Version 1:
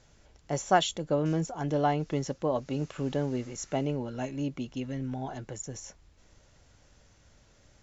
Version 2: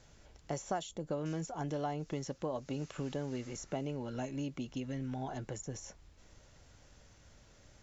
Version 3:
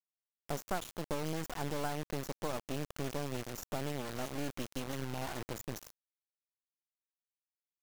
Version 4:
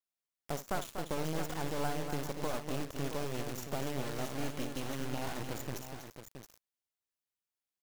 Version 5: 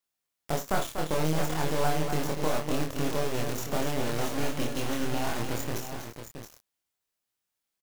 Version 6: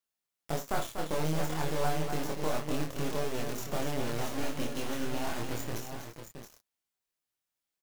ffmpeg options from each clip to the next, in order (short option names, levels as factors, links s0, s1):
-filter_complex "[0:a]acrossover=split=1100|6200[s0][s1][s2];[s0]acompressor=threshold=0.0158:ratio=4[s3];[s1]acompressor=threshold=0.00282:ratio=4[s4];[s2]acompressor=threshold=0.00251:ratio=4[s5];[s3][s4][s5]amix=inputs=3:normalize=0"
-af "acrusher=bits=4:dc=4:mix=0:aa=0.000001,volume=1.33"
-af "aecho=1:1:58|242|249|672:0.224|0.376|0.141|0.355"
-filter_complex "[0:a]asplit=2[s0][s1];[s1]adelay=26,volume=0.708[s2];[s0][s2]amix=inputs=2:normalize=0,volume=2"
-af "flanger=delay=4.5:depth=8:regen=-51:speed=0.3:shape=sinusoidal"